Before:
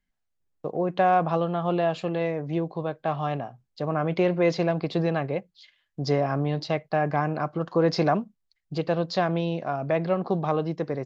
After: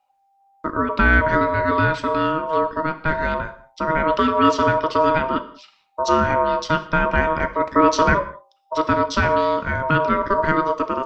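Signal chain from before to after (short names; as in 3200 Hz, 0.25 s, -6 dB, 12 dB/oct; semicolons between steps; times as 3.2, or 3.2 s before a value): low shelf 130 Hz +8 dB; notches 60/120/180/240/300/360/420 Hz; ring modulator 790 Hz; non-linear reverb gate 0.23 s falling, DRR 10 dB; gain +7.5 dB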